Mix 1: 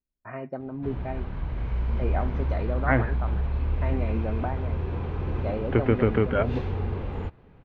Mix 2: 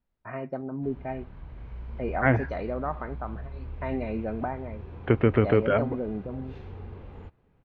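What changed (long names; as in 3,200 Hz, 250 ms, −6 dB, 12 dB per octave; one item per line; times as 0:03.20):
second voice: entry −0.65 s
background −12.0 dB
reverb: on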